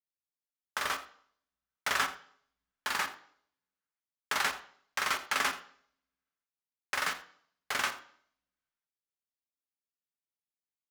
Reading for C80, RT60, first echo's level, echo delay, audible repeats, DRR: 14.5 dB, 0.55 s, -17.0 dB, 84 ms, 1, 5.5 dB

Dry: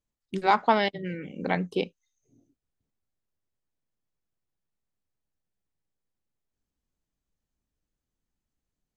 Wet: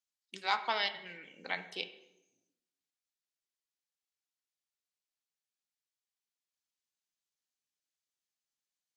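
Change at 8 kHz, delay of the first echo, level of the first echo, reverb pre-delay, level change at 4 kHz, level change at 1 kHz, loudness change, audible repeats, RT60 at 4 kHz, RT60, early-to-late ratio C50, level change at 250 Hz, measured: n/a, none, none, 4 ms, 0.0 dB, -11.0 dB, -8.5 dB, none, 0.70 s, 0.90 s, 12.5 dB, -23.0 dB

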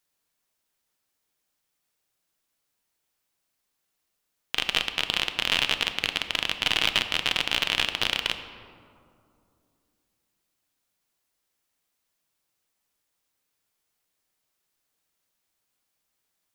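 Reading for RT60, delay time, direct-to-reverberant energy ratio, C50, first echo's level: 2.5 s, none, 8.0 dB, 10.0 dB, none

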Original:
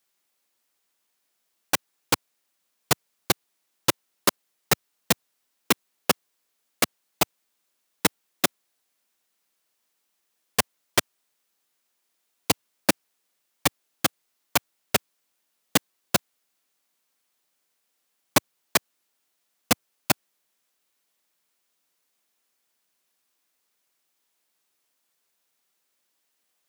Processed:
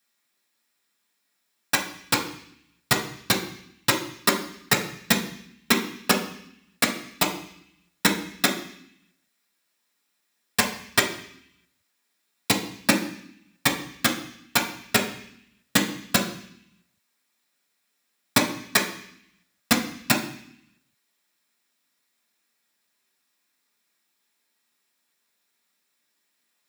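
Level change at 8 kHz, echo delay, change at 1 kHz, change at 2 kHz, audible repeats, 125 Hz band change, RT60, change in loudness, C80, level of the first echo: +0.5 dB, none, +1.0 dB, +4.5 dB, none, +2.5 dB, 0.70 s, +2.0 dB, 12.0 dB, none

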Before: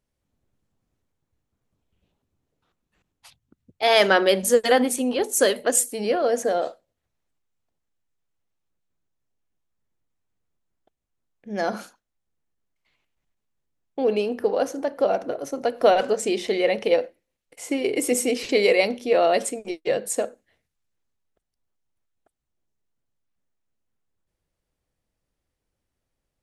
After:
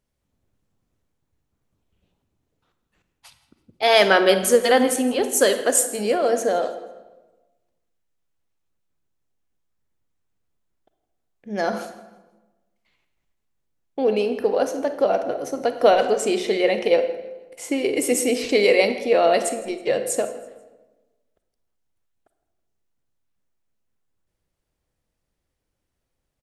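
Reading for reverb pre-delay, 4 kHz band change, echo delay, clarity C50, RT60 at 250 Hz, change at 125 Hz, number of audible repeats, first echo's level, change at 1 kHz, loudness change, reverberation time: 32 ms, +2.0 dB, 0.162 s, 10.0 dB, 1.4 s, n/a, 2, -19.5 dB, +2.0 dB, +2.0 dB, 1.2 s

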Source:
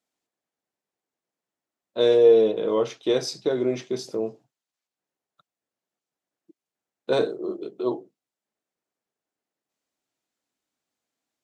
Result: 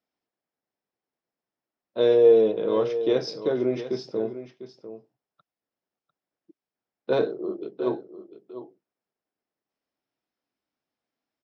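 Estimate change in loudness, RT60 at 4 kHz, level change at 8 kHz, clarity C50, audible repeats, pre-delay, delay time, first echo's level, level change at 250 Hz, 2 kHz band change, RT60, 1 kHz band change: -0.5 dB, none, under -10 dB, none, 1, none, 0.699 s, -12.5 dB, 0.0 dB, -2.0 dB, none, -1.0 dB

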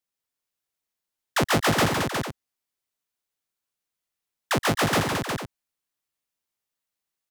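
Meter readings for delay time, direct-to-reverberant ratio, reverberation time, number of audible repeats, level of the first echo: 0.123 s, none, none, 4, -11.0 dB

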